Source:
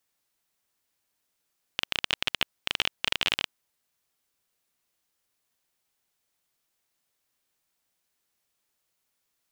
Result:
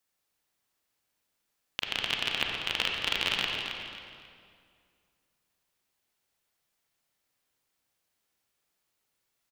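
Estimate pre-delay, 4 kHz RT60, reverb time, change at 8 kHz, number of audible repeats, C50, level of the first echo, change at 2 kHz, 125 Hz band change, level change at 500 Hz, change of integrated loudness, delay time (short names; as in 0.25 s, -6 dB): 30 ms, 1.8 s, 2.3 s, -2.0 dB, 2, 0.0 dB, -9.0 dB, 0.0 dB, +1.0 dB, +1.0 dB, -0.5 dB, 0.27 s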